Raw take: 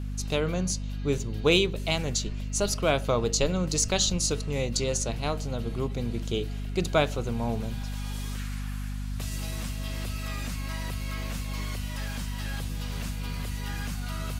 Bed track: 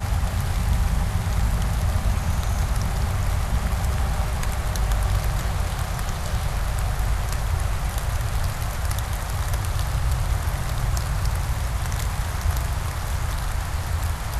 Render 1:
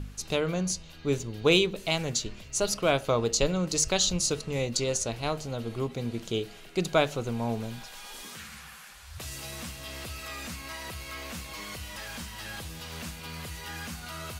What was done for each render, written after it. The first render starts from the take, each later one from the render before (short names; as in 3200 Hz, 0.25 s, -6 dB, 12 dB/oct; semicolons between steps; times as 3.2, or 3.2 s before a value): de-hum 50 Hz, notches 5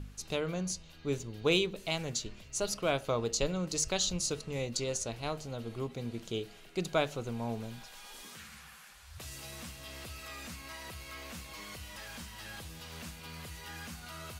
gain -6 dB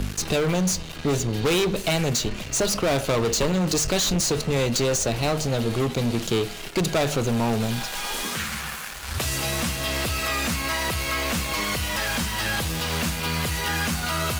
sample leveller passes 5; three-band squash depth 40%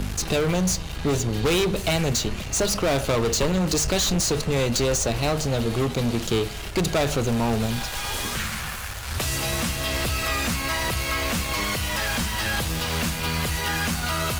add bed track -12.5 dB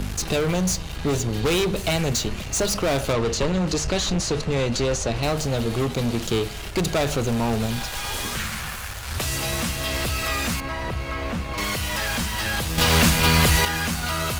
3.13–5.23 air absorption 57 m; 10.6–11.58 LPF 1200 Hz 6 dB/oct; 12.78–13.65 gain +8.5 dB